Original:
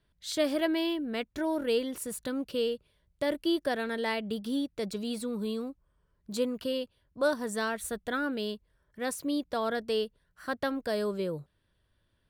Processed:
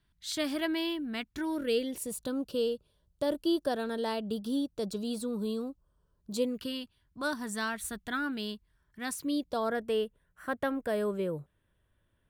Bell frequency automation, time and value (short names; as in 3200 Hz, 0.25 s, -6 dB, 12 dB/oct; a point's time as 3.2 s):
bell -15 dB 0.55 oct
1.3 s 510 Hz
2.3 s 2100 Hz
6.31 s 2100 Hz
6.72 s 520 Hz
9.18 s 520 Hz
9.79 s 4600 Hz